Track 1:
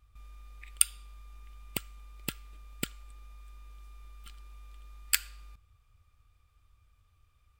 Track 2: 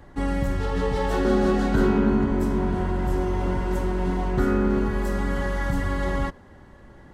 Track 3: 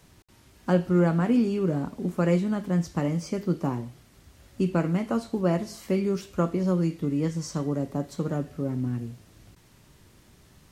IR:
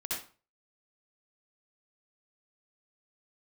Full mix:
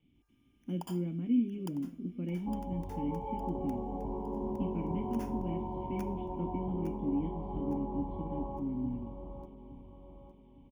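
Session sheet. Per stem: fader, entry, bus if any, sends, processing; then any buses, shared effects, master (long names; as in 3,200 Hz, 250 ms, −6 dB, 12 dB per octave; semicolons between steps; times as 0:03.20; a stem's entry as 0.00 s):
−11.5 dB, 0.00 s, bus A, send −17 dB, echo send −17 dB, decimation without filtering 11×; automatic ducking −8 dB, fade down 0.30 s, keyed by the third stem
−3.0 dB, 2.30 s, bus A, no send, echo send −16.5 dB, elliptic low-pass filter 1,000 Hz, stop band 40 dB
−3.5 dB, 0.00 s, no bus, no send, echo send −20.5 dB, formant resonators in series i
bus A: 0.0 dB, transistor ladder low-pass 1,000 Hz, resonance 65%; downward compressor 2.5 to 1, threshold −38 dBFS, peak gain reduction 6.5 dB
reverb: on, RT60 0.40 s, pre-delay 58 ms
echo: repeating echo 860 ms, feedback 41%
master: high-shelf EQ 4,600 Hz +11 dB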